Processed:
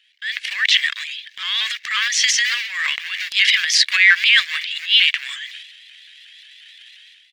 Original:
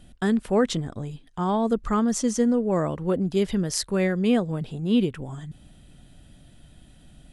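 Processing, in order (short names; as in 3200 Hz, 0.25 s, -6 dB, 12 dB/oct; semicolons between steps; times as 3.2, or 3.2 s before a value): G.711 law mismatch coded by A; Chebyshev high-pass 1900 Hz, order 5; air absorption 240 m; comb 1.8 ms, depth 36%; transient shaper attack -7 dB, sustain +10 dB; AGC gain up to 15.5 dB; maximiser +18 dB; shaped vibrato saw up 5.6 Hz, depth 100 cents; gain -1 dB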